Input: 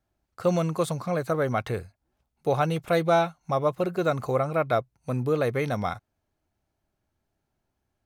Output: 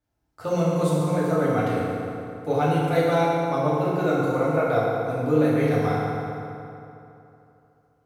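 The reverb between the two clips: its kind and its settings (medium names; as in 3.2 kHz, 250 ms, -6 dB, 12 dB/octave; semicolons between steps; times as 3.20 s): FDN reverb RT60 2.9 s, high-frequency decay 0.65×, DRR -8 dB; trim -6 dB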